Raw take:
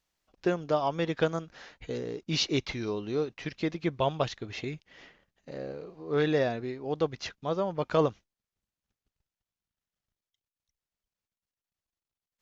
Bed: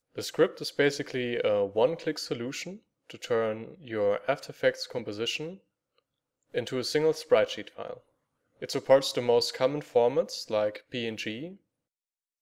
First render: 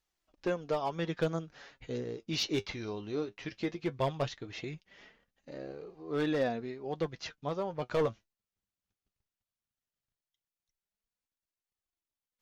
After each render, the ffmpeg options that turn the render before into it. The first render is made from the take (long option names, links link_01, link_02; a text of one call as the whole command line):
ffmpeg -i in.wav -af "asoftclip=type=hard:threshold=-20dB,flanger=delay=2.3:depth=8.6:regen=51:speed=0.17:shape=triangular" out.wav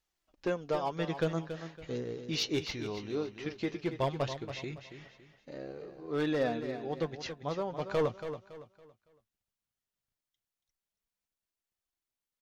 ffmpeg -i in.wav -af "aecho=1:1:280|560|840|1120:0.316|0.104|0.0344|0.0114" out.wav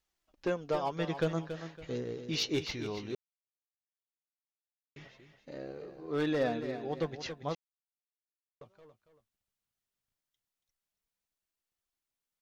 ffmpeg -i in.wav -filter_complex "[0:a]asplit=5[link_01][link_02][link_03][link_04][link_05];[link_01]atrim=end=3.15,asetpts=PTS-STARTPTS,afade=type=out:start_time=3.146:duration=0.004:curve=hsin[link_06];[link_02]atrim=start=3.15:end=4.96,asetpts=PTS-STARTPTS,volume=0[link_07];[link_03]atrim=start=4.96:end=7.55,asetpts=PTS-STARTPTS,afade=type=in:duration=0.004:curve=hsin,afade=type=out:start_time=2.586:duration=0.004:curve=hsin[link_08];[link_04]atrim=start=7.55:end=8.61,asetpts=PTS-STARTPTS,volume=0[link_09];[link_05]atrim=start=8.61,asetpts=PTS-STARTPTS,afade=type=in:duration=0.004:curve=hsin[link_10];[link_06][link_07][link_08][link_09][link_10]concat=n=5:v=0:a=1" out.wav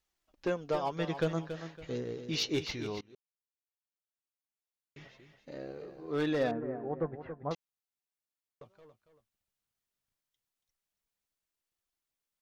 ffmpeg -i in.wav -filter_complex "[0:a]asettb=1/sr,asplit=3[link_01][link_02][link_03];[link_01]atrim=end=6.514[link_04];[link_02]atrim=start=6.51:end=7.51,asetpts=PTS-STARTPTS,afade=type=in:duration=0.004:curve=qsin,afade=type=out:start_time=0.996:duration=0.004:curve=qsin,lowpass=frequency=1500:width=0.5412,lowpass=frequency=1500:width=1.3066[link_05];[link_03]atrim=start=7.506[link_06];[link_04][link_05]acrossfade=duration=0.004:curve1=hsin:curve2=qsin[link_07];[link_07][link_06]acrossfade=duration=0.004:curve1=qsin:curve2=hsin,asplit=2[link_08][link_09];[link_08]atrim=end=3.01,asetpts=PTS-STARTPTS,afade=type=out:start_time=3.006:duration=0.004:curve=hsin:silence=0.0668344[link_10];[link_09]atrim=start=3.01,asetpts=PTS-STARTPTS,afade=type=in:duration=2.15:silence=0.0668344[link_11];[link_10][link_11]concat=n=2:v=0:a=1" out.wav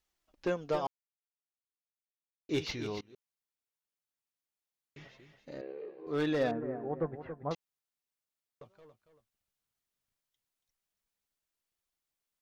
ffmpeg -i in.wav -filter_complex "[0:a]asettb=1/sr,asplit=3[link_01][link_02][link_03];[link_01]atrim=end=5.614[link_04];[link_02]atrim=start=5.61:end=6.07,asetpts=PTS-STARTPTS,afade=type=in:duration=0.004:curve=qsin,afade=type=out:start_time=0.456:duration=0.004:curve=qsin,highpass=380,equalizer=frequency=420:width_type=q:width=4:gain=7,equalizer=frequency=680:width_type=q:width=4:gain=-8,equalizer=frequency=1400:width_type=q:width=4:gain=-10,lowpass=frequency=3000:width=0.5412,lowpass=frequency=3000:width=1.3066[link_05];[link_03]atrim=start=6.066[link_06];[link_04][link_05]acrossfade=duration=0.004:curve1=hsin:curve2=qsin[link_07];[link_07][link_06]acrossfade=duration=0.004:curve1=qsin:curve2=hsin,asplit=3[link_08][link_09][link_10];[link_08]atrim=end=0.87,asetpts=PTS-STARTPTS,afade=type=out:start_time=0.866:duration=0.004:curve=hsin[link_11];[link_09]atrim=start=0.87:end=2.49,asetpts=PTS-STARTPTS,volume=0[link_12];[link_10]atrim=start=2.49,asetpts=PTS-STARTPTS,afade=type=in:duration=0.004:curve=hsin[link_13];[link_11][link_12][link_13]concat=n=3:v=0:a=1" out.wav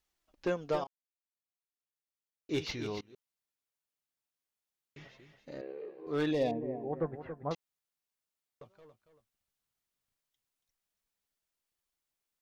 ffmpeg -i in.wav -filter_complex "[0:a]asettb=1/sr,asplit=3[link_01][link_02][link_03];[link_01]atrim=end=6.314[link_04];[link_02]atrim=start=6.31:end=6.93,asetpts=PTS-STARTPTS,afade=type=in:duration=0.004:curve=qsin,afade=type=out:start_time=0.616:duration=0.004:curve=qsin,asuperstop=centerf=1400:order=4:qfactor=1.2[link_05];[link_03]atrim=start=6.926[link_06];[link_04][link_05]acrossfade=duration=0.004:curve1=hsin:curve2=qsin[link_07];[link_07][link_06]acrossfade=duration=0.004:curve1=qsin:curve2=hsin,asplit=2[link_08][link_09];[link_08]atrim=end=0.84,asetpts=PTS-STARTPTS,afade=type=out:start_time=0.836:duration=0.004:curve=hsin:silence=0.16788[link_10];[link_09]atrim=start=0.84,asetpts=PTS-STARTPTS,afade=type=in:duration=1.99:silence=0.16788[link_11];[link_10][link_11]concat=n=2:v=0:a=1" out.wav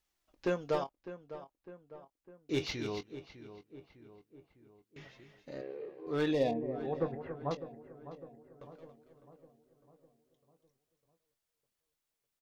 ffmpeg -i in.wav -filter_complex "[0:a]asplit=2[link_01][link_02];[link_02]adelay=22,volume=-12dB[link_03];[link_01][link_03]amix=inputs=2:normalize=0,asplit=2[link_04][link_05];[link_05]adelay=604,lowpass=frequency=2000:poles=1,volume=-13dB,asplit=2[link_06][link_07];[link_07]adelay=604,lowpass=frequency=2000:poles=1,volume=0.54,asplit=2[link_08][link_09];[link_09]adelay=604,lowpass=frequency=2000:poles=1,volume=0.54,asplit=2[link_10][link_11];[link_11]adelay=604,lowpass=frequency=2000:poles=1,volume=0.54,asplit=2[link_12][link_13];[link_13]adelay=604,lowpass=frequency=2000:poles=1,volume=0.54,asplit=2[link_14][link_15];[link_15]adelay=604,lowpass=frequency=2000:poles=1,volume=0.54[link_16];[link_04][link_06][link_08][link_10][link_12][link_14][link_16]amix=inputs=7:normalize=0" out.wav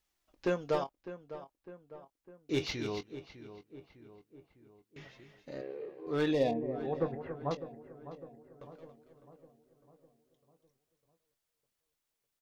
ffmpeg -i in.wav -af "volume=1dB" out.wav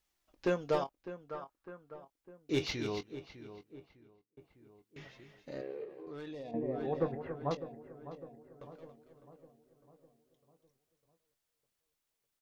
ffmpeg -i in.wav -filter_complex "[0:a]asettb=1/sr,asplit=3[link_01][link_02][link_03];[link_01]atrim=end=1.294[link_04];[link_02]atrim=start=1.29:end=1.94,asetpts=PTS-STARTPTS,afade=type=in:duration=0.004:curve=qsin,afade=type=out:start_time=0.646:duration=0.004:curve=qsin,equalizer=frequency=1300:width_type=o:width=0.68:gain=10.5[link_05];[link_03]atrim=start=1.936[link_06];[link_04][link_05]acrossfade=duration=0.004:curve1=hsin:curve2=qsin[link_07];[link_07][link_06]acrossfade=duration=0.004:curve1=qsin:curve2=hsin,asettb=1/sr,asplit=3[link_08][link_09][link_10];[link_08]atrim=end=5.844[link_11];[link_09]atrim=start=5.84:end=6.54,asetpts=PTS-STARTPTS,afade=type=in:duration=0.004:curve=qsin,afade=type=out:start_time=0.696:duration=0.004:curve=qsin,acompressor=threshold=-43dB:ratio=6:attack=3.2:release=140:knee=1:detection=peak[link_12];[link_10]atrim=start=6.536[link_13];[link_11][link_12]acrossfade=duration=0.004:curve1=hsin:curve2=qsin[link_14];[link_14][link_13]acrossfade=duration=0.004:curve1=qsin:curve2=hsin,asplit=2[link_15][link_16];[link_15]atrim=end=4.37,asetpts=PTS-STARTPTS,afade=type=out:start_time=3.68:duration=0.69[link_17];[link_16]atrim=start=4.37,asetpts=PTS-STARTPTS,afade=type=in:duration=0.004:curve=hsin[link_18];[link_17][link_18]concat=n=2:v=0:a=1" out.wav